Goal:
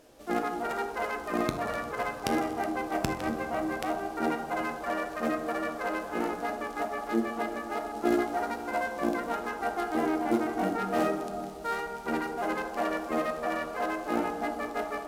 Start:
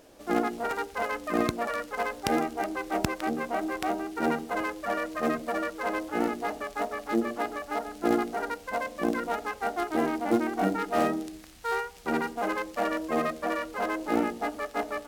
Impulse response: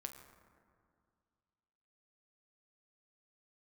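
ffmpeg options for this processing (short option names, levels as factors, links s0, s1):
-filter_complex "[0:a]asettb=1/sr,asplit=3[s0][s1][s2];[s0]atrim=end=7.954[s3];[s1]atrim=start=7.95:end=9.09,asetpts=PTS-STARTPTS,afade=t=in:d=0.004:c=qsin,afade=t=out:st=1.136:d=0.004:c=qsin,asplit=2[s4][s5];[s5]adelay=14,volume=0.596[s6];[s4][s6]amix=inputs=2:normalize=0,atrim=end_sample=50274[s7];[s2]atrim=start=9.086[s8];[s3][s7]acrossfade=d=0.004:c1=hsin:c2=qsin[s9];[s9][s8]acrossfade=d=0.004:c1=qsin:c2=hsin[s10];[1:a]atrim=start_sample=2205,asetrate=29547,aresample=44100[s11];[s10][s11]afir=irnorm=-1:irlink=0"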